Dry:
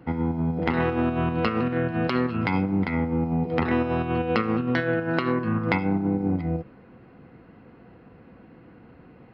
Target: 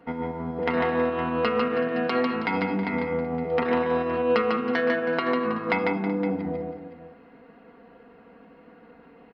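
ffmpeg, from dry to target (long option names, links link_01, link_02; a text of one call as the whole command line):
ffmpeg -i in.wav -af "bass=frequency=250:gain=-11,treble=frequency=4000:gain=-3,aecho=1:1:4.3:0.69,aecho=1:1:148|321|378|515:0.631|0.2|0.106|0.2,volume=-1.5dB" out.wav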